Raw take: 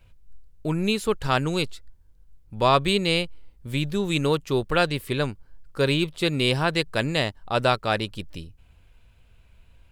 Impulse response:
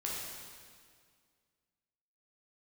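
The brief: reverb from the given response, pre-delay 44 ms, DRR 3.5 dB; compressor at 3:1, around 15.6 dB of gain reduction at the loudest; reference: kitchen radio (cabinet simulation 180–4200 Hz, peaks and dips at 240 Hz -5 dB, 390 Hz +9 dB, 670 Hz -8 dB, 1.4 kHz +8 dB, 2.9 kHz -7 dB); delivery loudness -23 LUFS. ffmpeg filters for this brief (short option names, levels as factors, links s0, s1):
-filter_complex "[0:a]acompressor=threshold=0.0158:ratio=3,asplit=2[s0][s1];[1:a]atrim=start_sample=2205,adelay=44[s2];[s1][s2]afir=irnorm=-1:irlink=0,volume=0.473[s3];[s0][s3]amix=inputs=2:normalize=0,highpass=180,equalizer=f=240:t=q:w=4:g=-5,equalizer=f=390:t=q:w=4:g=9,equalizer=f=670:t=q:w=4:g=-8,equalizer=f=1400:t=q:w=4:g=8,equalizer=f=2900:t=q:w=4:g=-7,lowpass=f=4200:w=0.5412,lowpass=f=4200:w=1.3066,volume=3.76"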